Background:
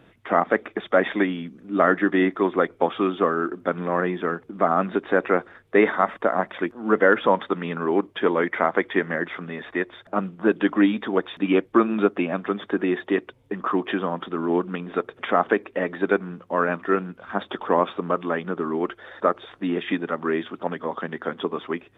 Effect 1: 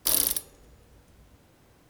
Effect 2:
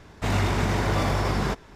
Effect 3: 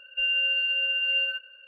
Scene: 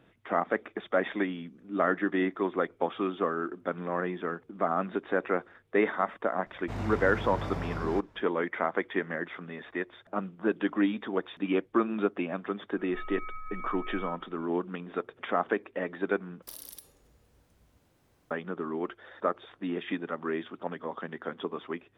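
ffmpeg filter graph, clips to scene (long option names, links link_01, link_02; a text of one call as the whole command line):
ffmpeg -i bed.wav -i cue0.wav -i cue1.wav -i cue2.wav -filter_complex "[0:a]volume=-8dB[link_01];[2:a]highshelf=frequency=2500:gain=-9.5[link_02];[3:a]lowpass=frequency=2400:width_type=q:width=0.5098,lowpass=frequency=2400:width_type=q:width=0.6013,lowpass=frequency=2400:width_type=q:width=0.9,lowpass=frequency=2400:width_type=q:width=2.563,afreqshift=-2800[link_03];[1:a]acompressor=threshold=-32dB:ratio=6:attack=3.2:release=140:knee=1:detection=peak[link_04];[link_01]asplit=2[link_05][link_06];[link_05]atrim=end=16.424[link_07];[link_04]atrim=end=1.89,asetpts=PTS-STARTPTS,volume=-8.5dB[link_08];[link_06]atrim=start=18.306[link_09];[link_02]atrim=end=1.75,asetpts=PTS-STARTPTS,volume=-11dB,afade=type=in:duration=0.004:curve=hsin,afade=type=out:start_time=1.746:duration=0.004:curve=hsin,adelay=6460[link_10];[link_03]atrim=end=1.67,asetpts=PTS-STARTPTS,volume=-1.5dB,afade=type=in:duration=0.004:curve=hsin,afade=type=out:start_time=1.666:duration=0.004:curve=hsin,adelay=12770[link_11];[link_07][link_08]acrossfade=duration=0.004:curve1=hsin:curve2=hsin[link_12];[link_12][link_09]acrossfade=duration=0.004:curve1=hsin:curve2=hsin[link_13];[link_13][link_10][link_11]amix=inputs=3:normalize=0" out.wav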